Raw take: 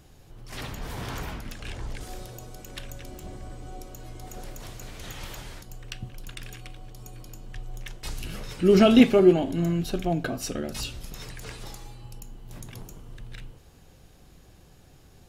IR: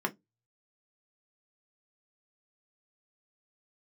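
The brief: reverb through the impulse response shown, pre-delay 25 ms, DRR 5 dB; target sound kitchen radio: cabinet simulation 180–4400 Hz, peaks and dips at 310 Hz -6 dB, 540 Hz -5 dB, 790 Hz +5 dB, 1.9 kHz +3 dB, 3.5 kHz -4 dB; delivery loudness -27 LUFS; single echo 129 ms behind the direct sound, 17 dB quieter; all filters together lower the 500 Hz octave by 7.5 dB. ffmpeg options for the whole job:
-filter_complex "[0:a]equalizer=f=500:t=o:g=-8.5,aecho=1:1:129:0.141,asplit=2[s0][s1];[1:a]atrim=start_sample=2205,adelay=25[s2];[s1][s2]afir=irnorm=-1:irlink=0,volume=0.251[s3];[s0][s3]amix=inputs=2:normalize=0,highpass=180,equalizer=f=310:t=q:w=4:g=-6,equalizer=f=540:t=q:w=4:g=-5,equalizer=f=790:t=q:w=4:g=5,equalizer=f=1900:t=q:w=4:g=3,equalizer=f=3500:t=q:w=4:g=-4,lowpass=f=4400:w=0.5412,lowpass=f=4400:w=1.3066"

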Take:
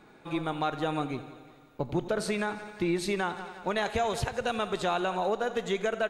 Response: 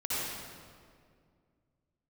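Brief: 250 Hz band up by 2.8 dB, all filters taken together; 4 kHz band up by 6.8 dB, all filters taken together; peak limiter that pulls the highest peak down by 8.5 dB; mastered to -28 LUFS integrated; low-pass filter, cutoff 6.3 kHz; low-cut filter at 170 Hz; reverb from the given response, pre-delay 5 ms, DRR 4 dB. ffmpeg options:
-filter_complex "[0:a]highpass=170,lowpass=6300,equalizer=f=250:t=o:g=5.5,equalizer=f=4000:t=o:g=8.5,alimiter=limit=0.075:level=0:latency=1,asplit=2[s0][s1];[1:a]atrim=start_sample=2205,adelay=5[s2];[s1][s2]afir=irnorm=-1:irlink=0,volume=0.282[s3];[s0][s3]amix=inputs=2:normalize=0,volume=1.5"

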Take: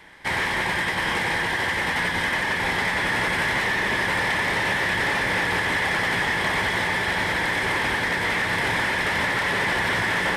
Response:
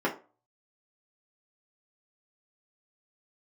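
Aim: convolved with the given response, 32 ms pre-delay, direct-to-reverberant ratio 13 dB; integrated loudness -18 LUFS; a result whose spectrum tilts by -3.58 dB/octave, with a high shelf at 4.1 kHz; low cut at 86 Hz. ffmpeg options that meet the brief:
-filter_complex "[0:a]highpass=86,highshelf=f=4100:g=8,asplit=2[s0][s1];[1:a]atrim=start_sample=2205,adelay=32[s2];[s1][s2]afir=irnorm=-1:irlink=0,volume=0.0631[s3];[s0][s3]amix=inputs=2:normalize=0,volume=1.33"

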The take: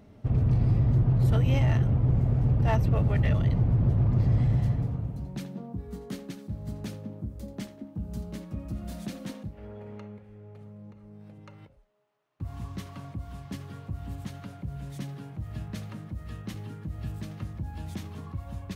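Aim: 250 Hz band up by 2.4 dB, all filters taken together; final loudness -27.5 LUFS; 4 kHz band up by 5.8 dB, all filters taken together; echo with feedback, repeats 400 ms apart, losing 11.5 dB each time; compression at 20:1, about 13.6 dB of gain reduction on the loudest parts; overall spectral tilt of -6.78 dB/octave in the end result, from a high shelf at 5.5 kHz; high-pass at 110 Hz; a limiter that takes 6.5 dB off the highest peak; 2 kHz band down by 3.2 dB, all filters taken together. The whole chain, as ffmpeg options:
-af "highpass=110,equalizer=f=250:t=o:g=4.5,equalizer=f=2000:t=o:g=-7,equalizer=f=4000:t=o:g=8,highshelf=f=5500:g=5.5,acompressor=threshold=0.02:ratio=20,alimiter=level_in=2.51:limit=0.0631:level=0:latency=1,volume=0.398,aecho=1:1:400|800|1200:0.266|0.0718|0.0194,volume=5.01"

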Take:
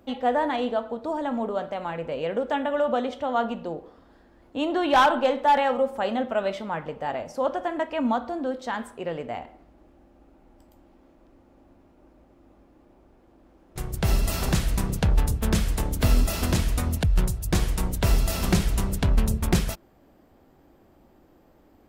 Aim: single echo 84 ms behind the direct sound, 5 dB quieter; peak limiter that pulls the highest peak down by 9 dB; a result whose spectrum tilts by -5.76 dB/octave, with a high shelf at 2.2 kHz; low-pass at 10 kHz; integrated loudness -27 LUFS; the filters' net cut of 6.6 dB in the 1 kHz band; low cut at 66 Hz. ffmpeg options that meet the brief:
-af "highpass=66,lowpass=10000,equalizer=f=1000:t=o:g=-8,highshelf=f=2200:g=-4,alimiter=limit=0.126:level=0:latency=1,aecho=1:1:84:0.562,volume=1.26"

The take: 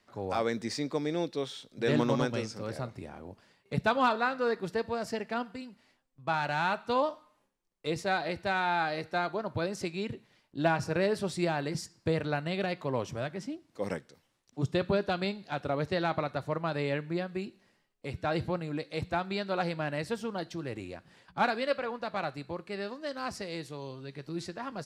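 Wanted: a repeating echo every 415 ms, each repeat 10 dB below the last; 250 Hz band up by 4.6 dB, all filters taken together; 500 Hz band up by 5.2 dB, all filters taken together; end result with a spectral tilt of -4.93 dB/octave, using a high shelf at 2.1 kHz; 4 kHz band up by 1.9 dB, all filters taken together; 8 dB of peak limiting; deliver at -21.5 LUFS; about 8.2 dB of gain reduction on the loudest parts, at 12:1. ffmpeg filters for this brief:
-af "equalizer=f=250:t=o:g=4.5,equalizer=f=500:t=o:g=5.5,highshelf=f=2100:g=-5.5,equalizer=f=4000:t=o:g=7,acompressor=threshold=0.0501:ratio=12,alimiter=limit=0.0668:level=0:latency=1,aecho=1:1:415|830|1245|1660:0.316|0.101|0.0324|0.0104,volume=4.47"

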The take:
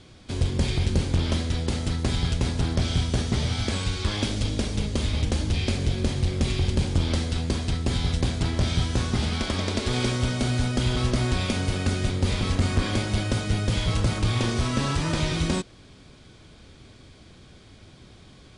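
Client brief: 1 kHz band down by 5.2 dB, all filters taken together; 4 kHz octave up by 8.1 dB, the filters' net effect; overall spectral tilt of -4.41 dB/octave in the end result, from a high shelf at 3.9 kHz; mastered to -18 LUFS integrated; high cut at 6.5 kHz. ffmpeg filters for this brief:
-af "lowpass=6500,equalizer=f=1000:t=o:g=-8,highshelf=f=3900:g=4,equalizer=f=4000:t=o:g=8.5,volume=2"

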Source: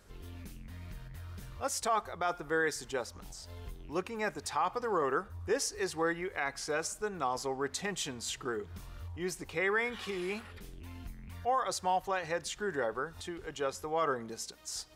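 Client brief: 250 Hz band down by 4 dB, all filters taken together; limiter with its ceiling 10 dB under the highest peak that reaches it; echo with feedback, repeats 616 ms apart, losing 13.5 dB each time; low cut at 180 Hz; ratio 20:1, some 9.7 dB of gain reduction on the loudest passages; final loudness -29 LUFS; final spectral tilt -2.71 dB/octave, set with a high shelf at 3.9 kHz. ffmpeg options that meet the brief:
-af "highpass=180,equalizer=f=250:t=o:g=-5,highshelf=f=3900:g=-7,acompressor=threshold=0.0158:ratio=20,alimiter=level_in=3.16:limit=0.0631:level=0:latency=1,volume=0.316,aecho=1:1:616|1232:0.211|0.0444,volume=6.31"

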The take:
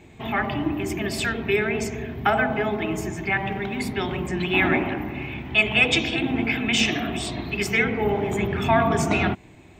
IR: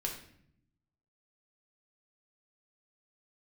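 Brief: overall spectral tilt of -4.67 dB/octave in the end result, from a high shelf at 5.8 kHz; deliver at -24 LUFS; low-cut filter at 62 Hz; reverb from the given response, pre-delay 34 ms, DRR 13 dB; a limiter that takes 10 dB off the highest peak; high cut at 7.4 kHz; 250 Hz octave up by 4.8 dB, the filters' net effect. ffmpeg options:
-filter_complex "[0:a]highpass=62,lowpass=7400,equalizer=f=250:t=o:g=6,highshelf=f=5800:g=-6,alimiter=limit=0.168:level=0:latency=1,asplit=2[s0][s1];[1:a]atrim=start_sample=2205,adelay=34[s2];[s1][s2]afir=irnorm=-1:irlink=0,volume=0.188[s3];[s0][s3]amix=inputs=2:normalize=0,volume=1.06"

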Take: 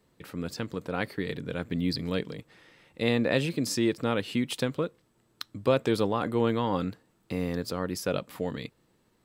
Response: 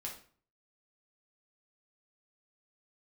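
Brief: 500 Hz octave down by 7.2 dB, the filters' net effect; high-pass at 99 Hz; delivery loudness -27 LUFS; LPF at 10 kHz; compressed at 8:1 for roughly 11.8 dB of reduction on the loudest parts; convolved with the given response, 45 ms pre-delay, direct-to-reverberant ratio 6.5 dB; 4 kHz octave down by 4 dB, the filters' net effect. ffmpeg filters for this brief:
-filter_complex "[0:a]highpass=99,lowpass=10000,equalizer=f=500:t=o:g=-8.5,equalizer=f=4000:t=o:g=-5,acompressor=threshold=0.0158:ratio=8,asplit=2[s0][s1];[1:a]atrim=start_sample=2205,adelay=45[s2];[s1][s2]afir=irnorm=-1:irlink=0,volume=0.562[s3];[s0][s3]amix=inputs=2:normalize=0,volume=5.31"

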